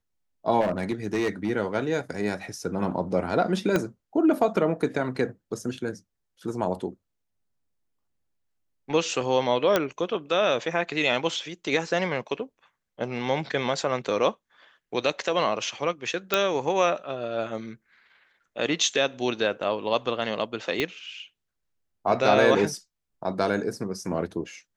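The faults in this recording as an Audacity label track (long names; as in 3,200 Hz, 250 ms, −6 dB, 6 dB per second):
0.600000	1.510000	clipping −20.5 dBFS
3.760000	3.760000	click −10 dBFS
9.760000	9.760000	click −7 dBFS
16.340000	16.340000	click −6 dBFS
20.800000	20.800000	click −12 dBFS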